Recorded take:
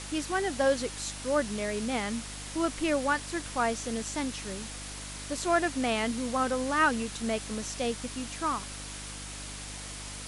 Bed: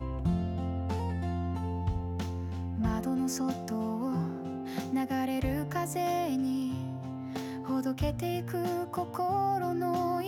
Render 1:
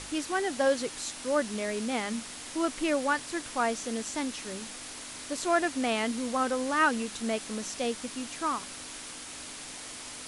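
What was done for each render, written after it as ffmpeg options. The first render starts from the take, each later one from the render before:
ffmpeg -i in.wav -af "bandreject=frequency=50:width_type=h:width=4,bandreject=frequency=100:width_type=h:width=4,bandreject=frequency=150:width_type=h:width=4,bandreject=frequency=200:width_type=h:width=4" out.wav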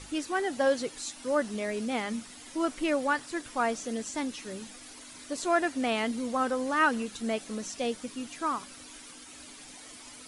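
ffmpeg -i in.wav -af "afftdn=noise_reduction=10:noise_floor=-43" out.wav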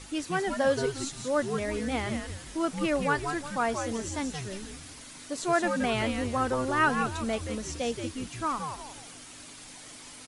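ffmpeg -i in.wav -filter_complex "[0:a]asplit=5[link_01][link_02][link_03][link_04][link_05];[link_02]adelay=175,afreqshift=-140,volume=-6dB[link_06];[link_03]adelay=350,afreqshift=-280,volume=-14.9dB[link_07];[link_04]adelay=525,afreqshift=-420,volume=-23.7dB[link_08];[link_05]adelay=700,afreqshift=-560,volume=-32.6dB[link_09];[link_01][link_06][link_07][link_08][link_09]amix=inputs=5:normalize=0" out.wav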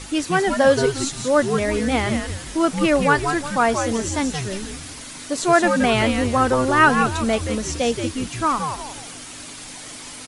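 ffmpeg -i in.wav -af "volume=10dB" out.wav

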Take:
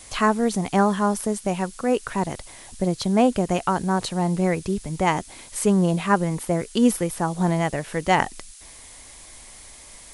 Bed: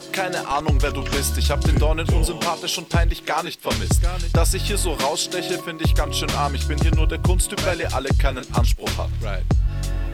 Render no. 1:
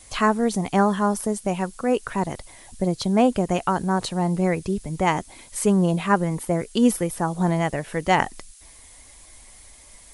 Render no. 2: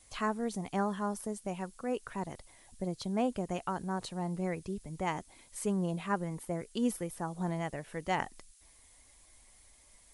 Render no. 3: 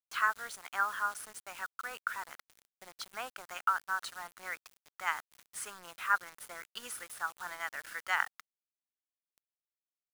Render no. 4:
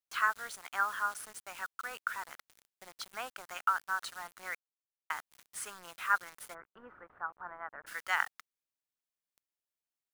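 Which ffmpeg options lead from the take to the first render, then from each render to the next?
ffmpeg -i in.wav -af "afftdn=noise_reduction=6:noise_floor=-45" out.wav
ffmpeg -i in.wav -af "volume=-13dB" out.wav
ffmpeg -i in.wav -af "highpass=frequency=1400:width_type=q:width=5.4,acrusher=bits=7:mix=0:aa=0.000001" out.wav
ffmpeg -i in.wav -filter_complex "[0:a]asplit=3[link_01][link_02][link_03];[link_01]afade=type=out:start_time=6.53:duration=0.02[link_04];[link_02]lowpass=frequency=1400:width=0.5412,lowpass=frequency=1400:width=1.3066,afade=type=in:start_time=6.53:duration=0.02,afade=type=out:start_time=7.86:duration=0.02[link_05];[link_03]afade=type=in:start_time=7.86:duration=0.02[link_06];[link_04][link_05][link_06]amix=inputs=3:normalize=0,asplit=3[link_07][link_08][link_09];[link_07]atrim=end=4.55,asetpts=PTS-STARTPTS,afade=type=out:start_time=4.546:duration=0.004:curve=hsin[link_10];[link_08]atrim=start=4.55:end=5.1,asetpts=PTS-STARTPTS,volume=0[link_11];[link_09]atrim=start=5.1,asetpts=PTS-STARTPTS,afade=type=in:duration=0.004:curve=hsin[link_12];[link_10][link_11][link_12]concat=n=3:v=0:a=1" out.wav

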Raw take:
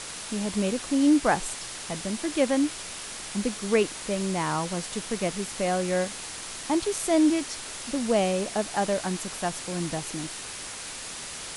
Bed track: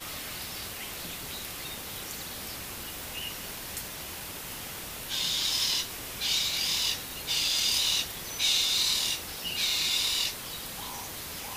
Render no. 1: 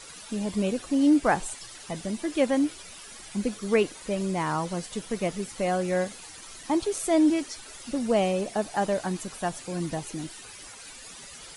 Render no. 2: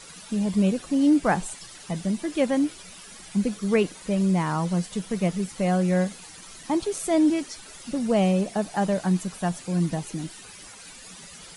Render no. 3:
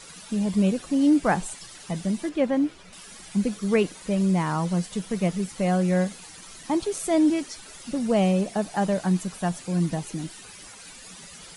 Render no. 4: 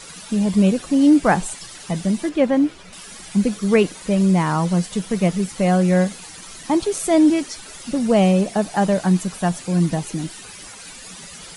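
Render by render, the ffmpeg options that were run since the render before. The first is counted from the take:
ffmpeg -i in.wav -af "afftdn=noise_reduction=12:noise_floor=-38" out.wav
ffmpeg -i in.wav -af "equalizer=frequency=180:width=3.2:gain=10" out.wav
ffmpeg -i in.wav -filter_complex "[0:a]asettb=1/sr,asplit=3[link_01][link_02][link_03];[link_01]atrim=end=2.294[link_04];[link_02]atrim=start=2.29:end=2.93,asetpts=PTS-STARTPTS,afade=type=in:duration=0.004:curve=qsin,afade=type=out:start_time=0.636:duration=0.004:curve=qsin,aemphasis=mode=reproduction:type=75kf[link_05];[link_03]atrim=start=2.926[link_06];[link_04][link_05]acrossfade=duration=0.004:curve1=hsin:curve2=qsin[link_07];[link_07][link_06]acrossfade=duration=0.004:curve1=qsin:curve2=hsin" out.wav
ffmpeg -i in.wav -af "volume=6dB" out.wav

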